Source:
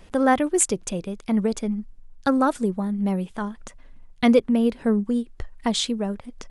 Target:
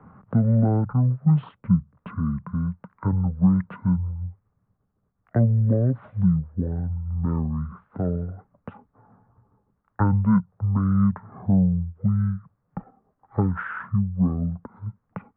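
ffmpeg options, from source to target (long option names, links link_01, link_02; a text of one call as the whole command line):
ffmpeg -i in.wav -filter_complex "[0:a]acrossover=split=320|870[link_01][link_02][link_03];[link_01]acompressor=threshold=-29dB:ratio=4[link_04];[link_02]acompressor=threshold=-30dB:ratio=4[link_05];[link_03]acompressor=threshold=-32dB:ratio=4[link_06];[link_04][link_05][link_06]amix=inputs=3:normalize=0,highpass=240,equalizer=frequency=280:width_type=q:width=4:gain=5,equalizer=frequency=430:width_type=q:width=4:gain=8,equalizer=frequency=820:width_type=q:width=4:gain=-9,equalizer=frequency=1600:width_type=q:width=4:gain=-4,equalizer=frequency=2800:width_type=q:width=4:gain=4,lowpass=frequency=3400:width=0.5412,lowpass=frequency=3400:width=1.3066,asetrate=18654,aresample=44100,volume=4.5dB" out.wav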